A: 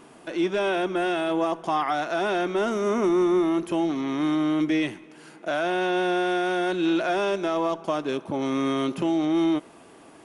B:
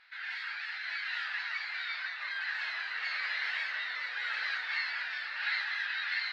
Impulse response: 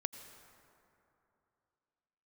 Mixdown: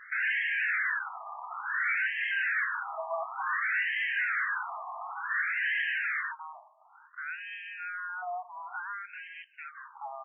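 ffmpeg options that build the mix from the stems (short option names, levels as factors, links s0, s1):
-filter_complex "[0:a]adelay=1700,volume=0.75,asplit=2[s0][s1];[s1]volume=0.112[s2];[1:a]aeval=exprs='0.0891*sin(PI/2*3.16*val(0)/0.0891)':c=same,highshelf=f=2900:g=-10.5,volume=1.41[s3];[2:a]atrim=start_sample=2205[s4];[s2][s4]afir=irnorm=-1:irlink=0[s5];[s0][s3][s5]amix=inputs=3:normalize=0,asoftclip=type=hard:threshold=0.0562,afftfilt=real='re*between(b*sr/1024,860*pow(2300/860,0.5+0.5*sin(2*PI*0.56*pts/sr))/1.41,860*pow(2300/860,0.5+0.5*sin(2*PI*0.56*pts/sr))*1.41)':imag='im*between(b*sr/1024,860*pow(2300/860,0.5+0.5*sin(2*PI*0.56*pts/sr))/1.41,860*pow(2300/860,0.5+0.5*sin(2*PI*0.56*pts/sr))*1.41)':win_size=1024:overlap=0.75"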